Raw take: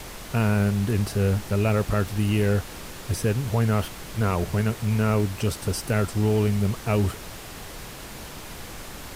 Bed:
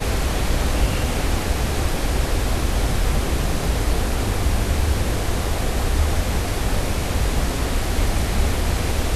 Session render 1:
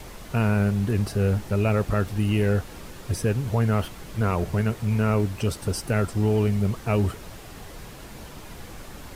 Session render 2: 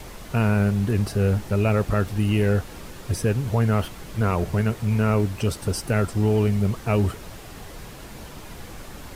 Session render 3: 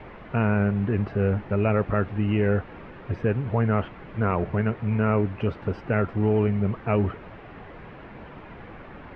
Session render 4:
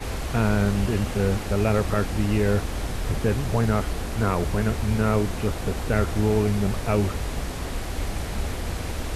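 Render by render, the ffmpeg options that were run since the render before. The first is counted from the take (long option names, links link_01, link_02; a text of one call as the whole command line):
ffmpeg -i in.wav -af "afftdn=noise_reduction=6:noise_floor=-39" out.wav
ffmpeg -i in.wav -af "volume=1.5dB" out.wav
ffmpeg -i in.wav -af "lowpass=frequency=2400:width=0.5412,lowpass=frequency=2400:width=1.3066,lowshelf=frequency=71:gain=-11" out.wav
ffmpeg -i in.wav -i bed.wav -filter_complex "[1:a]volume=-8.5dB[link_01];[0:a][link_01]amix=inputs=2:normalize=0" out.wav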